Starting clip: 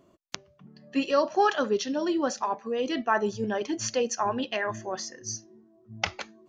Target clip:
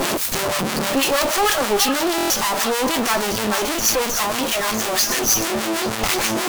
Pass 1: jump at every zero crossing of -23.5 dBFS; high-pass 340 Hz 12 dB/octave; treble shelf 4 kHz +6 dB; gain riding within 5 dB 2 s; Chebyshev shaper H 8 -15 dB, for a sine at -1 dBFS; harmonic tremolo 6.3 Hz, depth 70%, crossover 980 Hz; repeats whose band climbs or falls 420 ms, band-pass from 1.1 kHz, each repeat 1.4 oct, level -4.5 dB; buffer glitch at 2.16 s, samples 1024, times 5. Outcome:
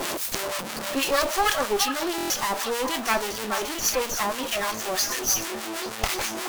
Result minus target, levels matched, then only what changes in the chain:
125 Hz band -3.5 dB; jump at every zero crossing: distortion -4 dB
change: jump at every zero crossing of -15.5 dBFS; change: high-pass 170 Hz 12 dB/octave

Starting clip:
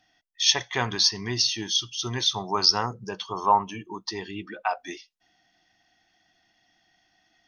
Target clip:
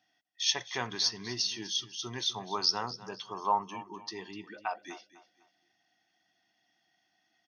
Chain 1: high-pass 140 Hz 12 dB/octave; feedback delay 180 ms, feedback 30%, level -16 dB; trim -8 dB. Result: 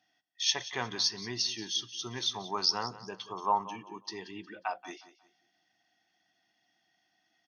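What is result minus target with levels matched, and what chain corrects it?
echo 70 ms early
high-pass 140 Hz 12 dB/octave; feedback delay 250 ms, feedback 30%, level -16 dB; trim -8 dB

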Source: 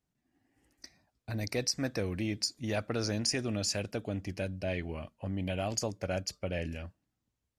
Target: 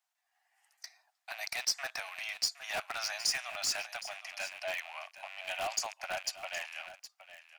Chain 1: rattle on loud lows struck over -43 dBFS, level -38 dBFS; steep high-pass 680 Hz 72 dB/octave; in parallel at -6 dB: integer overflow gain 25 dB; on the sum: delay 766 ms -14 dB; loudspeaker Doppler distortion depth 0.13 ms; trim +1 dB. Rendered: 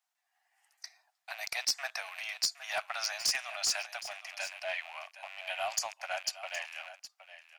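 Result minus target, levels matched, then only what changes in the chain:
integer overflow: distortion -5 dB
change: integer overflow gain 32 dB

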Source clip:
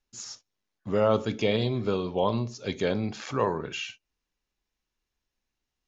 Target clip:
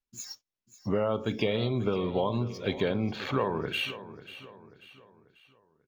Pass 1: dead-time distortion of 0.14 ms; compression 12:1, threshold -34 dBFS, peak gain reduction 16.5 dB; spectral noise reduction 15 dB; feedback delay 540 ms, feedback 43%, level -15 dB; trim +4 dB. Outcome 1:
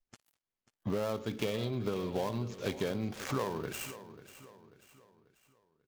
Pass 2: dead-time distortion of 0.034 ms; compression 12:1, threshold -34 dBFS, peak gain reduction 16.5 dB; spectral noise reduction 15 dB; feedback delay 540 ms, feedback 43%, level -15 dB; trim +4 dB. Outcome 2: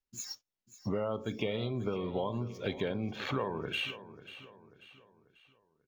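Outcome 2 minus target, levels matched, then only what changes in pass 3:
compression: peak gain reduction +6 dB
change: compression 12:1, threshold -27.5 dBFS, peak gain reduction 10.5 dB

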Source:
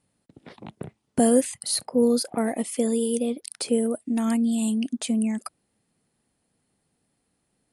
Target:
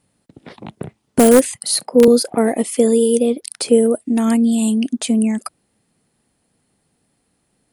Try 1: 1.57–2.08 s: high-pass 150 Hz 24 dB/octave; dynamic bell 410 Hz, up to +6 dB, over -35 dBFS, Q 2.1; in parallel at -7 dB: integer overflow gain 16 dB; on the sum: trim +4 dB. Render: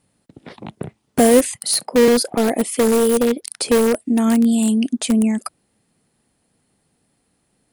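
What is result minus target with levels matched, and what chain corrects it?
integer overflow: distortion +14 dB
1.57–2.08 s: high-pass 150 Hz 24 dB/octave; dynamic bell 410 Hz, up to +6 dB, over -35 dBFS, Q 2.1; in parallel at -7 dB: integer overflow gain 8.5 dB; on the sum: trim +4 dB

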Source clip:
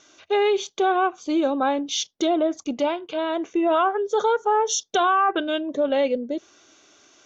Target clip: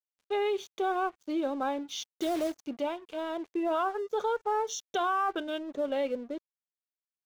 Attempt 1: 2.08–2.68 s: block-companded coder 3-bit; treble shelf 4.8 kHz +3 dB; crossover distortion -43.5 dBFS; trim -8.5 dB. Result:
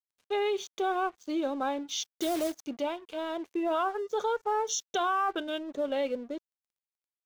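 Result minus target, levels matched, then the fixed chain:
8 kHz band +5.5 dB
2.08–2.68 s: block-companded coder 3-bit; treble shelf 4.8 kHz -5.5 dB; crossover distortion -43.5 dBFS; trim -8.5 dB

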